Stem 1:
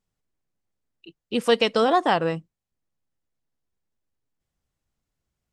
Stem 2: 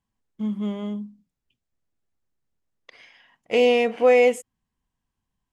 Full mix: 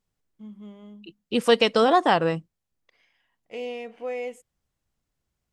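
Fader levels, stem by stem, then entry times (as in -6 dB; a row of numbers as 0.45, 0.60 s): +1.0, -15.5 dB; 0.00, 0.00 s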